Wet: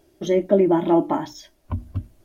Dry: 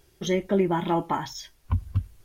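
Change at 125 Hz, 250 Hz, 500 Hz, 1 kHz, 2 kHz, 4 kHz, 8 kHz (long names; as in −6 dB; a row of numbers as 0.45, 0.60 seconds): −1.0 dB, +7.0 dB, +7.5 dB, +2.0 dB, −2.5 dB, −3.5 dB, can't be measured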